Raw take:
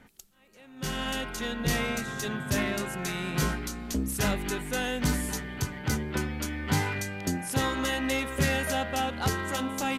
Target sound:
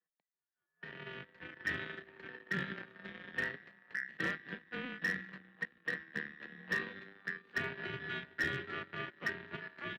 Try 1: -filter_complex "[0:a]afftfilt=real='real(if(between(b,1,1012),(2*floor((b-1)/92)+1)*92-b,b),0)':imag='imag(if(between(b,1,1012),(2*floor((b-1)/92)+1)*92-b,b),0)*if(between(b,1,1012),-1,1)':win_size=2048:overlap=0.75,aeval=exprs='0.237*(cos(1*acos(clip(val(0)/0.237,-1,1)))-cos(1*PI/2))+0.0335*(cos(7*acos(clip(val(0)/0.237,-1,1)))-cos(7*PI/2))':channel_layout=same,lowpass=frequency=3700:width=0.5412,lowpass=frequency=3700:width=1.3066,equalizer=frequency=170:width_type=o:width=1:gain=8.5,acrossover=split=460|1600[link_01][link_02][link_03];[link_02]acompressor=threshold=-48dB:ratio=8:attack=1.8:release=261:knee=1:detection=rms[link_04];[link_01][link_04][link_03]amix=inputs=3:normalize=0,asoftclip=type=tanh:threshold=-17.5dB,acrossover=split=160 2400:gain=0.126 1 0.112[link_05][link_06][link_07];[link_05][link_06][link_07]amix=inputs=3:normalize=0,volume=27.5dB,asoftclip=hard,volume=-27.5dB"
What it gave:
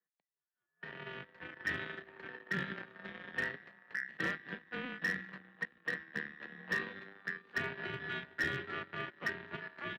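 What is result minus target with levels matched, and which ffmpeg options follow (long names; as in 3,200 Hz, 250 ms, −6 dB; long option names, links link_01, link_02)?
downward compressor: peak gain reduction −7.5 dB
-filter_complex "[0:a]afftfilt=real='real(if(between(b,1,1012),(2*floor((b-1)/92)+1)*92-b,b),0)':imag='imag(if(between(b,1,1012),(2*floor((b-1)/92)+1)*92-b,b),0)*if(between(b,1,1012),-1,1)':win_size=2048:overlap=0.75,aeval=exprs='0.237*(cos(1*acos(clip(val(0)/0.237,-1,1)))-cos(1*PI/2))+0.0335*(cos(7*acos(clip(val(0)/0.237,-1,1)))-cos(7*PI/2))':channel_layout=same,lowpass=frequency=3700:width=0.5412,lowpass=frequency=3700:width=1.3066,equalizer=frequency=170:width_type=o:width=1:gain=8.5,acrossover=split=460|1600[link_01][link_02][link_03];[link_02]acompressor=threshold=-56.5dB:ratio=8:attack=1.8:release=261:knee=1:detection=rms[link_04];[link_01][link_04][link_03]amix=inputs=3:normalize=0,asoftclip=type=tanh:threshold=-17.5dB,acrossover=split=160 2400:gain=0.126 1 0.112[link_05][link_06][link_07];[link_05][link_06][link_07]amix=inputs=3:normalize=0,volume=27.5dB,asoftclip=hard,volume=-27.5dB"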